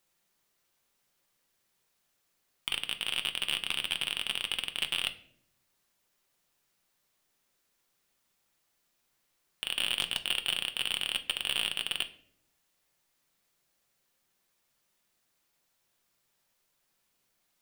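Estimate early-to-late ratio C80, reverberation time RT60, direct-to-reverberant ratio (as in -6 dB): 18.5 dB, 0.60 s, 7.0 dB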